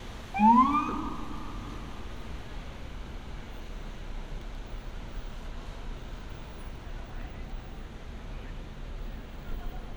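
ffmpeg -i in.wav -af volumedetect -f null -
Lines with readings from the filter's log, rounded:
mean_volume: -32.6 dB
max_volume: -10.2 dB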